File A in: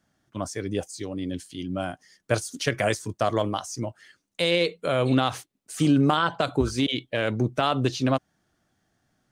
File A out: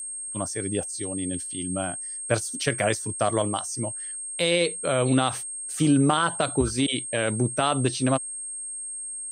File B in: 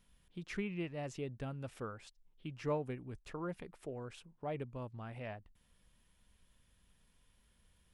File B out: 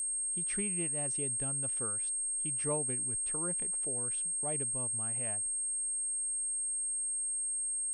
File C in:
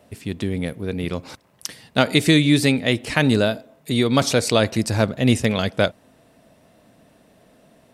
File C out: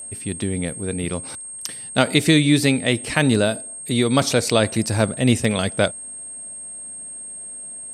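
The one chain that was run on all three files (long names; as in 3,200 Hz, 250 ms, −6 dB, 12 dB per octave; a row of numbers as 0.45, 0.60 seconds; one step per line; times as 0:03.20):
steady tone 8,500 Hz −32 dBFS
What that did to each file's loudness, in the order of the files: +0.5, +12.0, 0.0 LU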